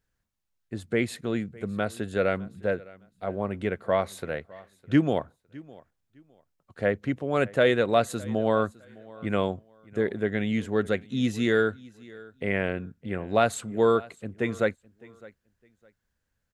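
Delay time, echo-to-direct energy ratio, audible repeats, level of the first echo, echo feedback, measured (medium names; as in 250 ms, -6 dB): 609 ms, -22.0 dB, 2, -22.0 dB, 23%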